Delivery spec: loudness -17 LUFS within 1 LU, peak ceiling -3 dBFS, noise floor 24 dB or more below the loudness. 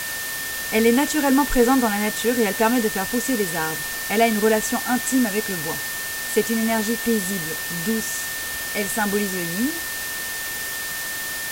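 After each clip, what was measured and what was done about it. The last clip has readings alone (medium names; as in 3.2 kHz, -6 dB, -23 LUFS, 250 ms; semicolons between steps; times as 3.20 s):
steady tone 1.8 kHz; tone level -30 dBFS; noise floor -29 dBFS; noise floor target -46 dBFS; loudness -21.5 LUFS; peak level -4.5 dBFS; loudness target -17.0 LUFS
-> band-stop 1.8 kHz, Q 30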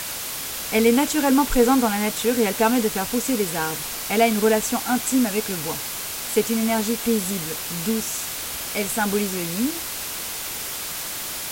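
steady tone not found; noise floor -31 dBFS; noise floor target -47 dBFS
-> noise reduction 16 dB, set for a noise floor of -31 dBFS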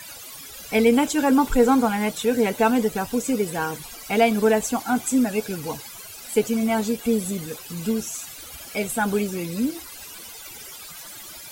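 noise floor -40 dBFS; noise floor target -47 dBFS
-> noise reduction 7 dB, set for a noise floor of -40 dBFS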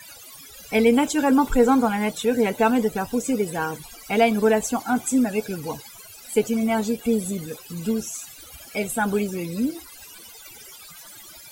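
noise floor -44 dBFS; noise floor target -47 dBFS
-> noise reduction 6 dB, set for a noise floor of -44 dBFS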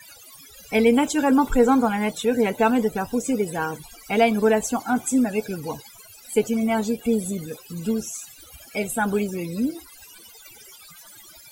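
noise floor -47 dBFS; loudness -22.5 LUFS; peak level -6.0 dBFS; loudness target -17.0 LUFS
-> trim +5.5 dB; peak limiter -3 dBFS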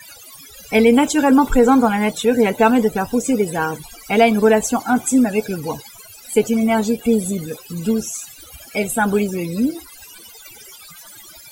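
loudness -17.5 LUFS; peak level -3.0 dBFS; noise floor -42 dBFS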